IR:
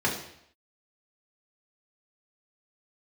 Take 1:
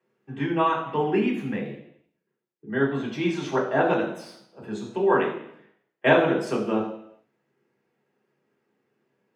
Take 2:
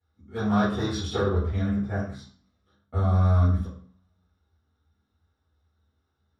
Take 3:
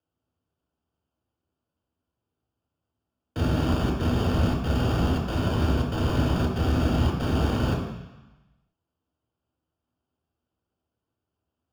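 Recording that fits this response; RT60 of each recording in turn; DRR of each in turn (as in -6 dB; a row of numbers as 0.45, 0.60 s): 1; 0.70, 0.45, 1.0 s; -4.0, -13.0, -0.5 dB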